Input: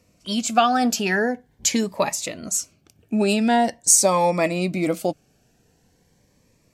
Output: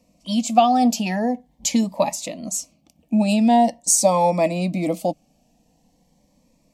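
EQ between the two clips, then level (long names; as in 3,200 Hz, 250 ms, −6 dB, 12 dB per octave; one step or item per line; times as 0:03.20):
parametric band 6,000 Hz −4.5 dB 2.8 octaves
high-shelf EQ 11,000 Hz −7 dB
phaser with its sweep stopped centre 400 Hz, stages 6
+4.0 dB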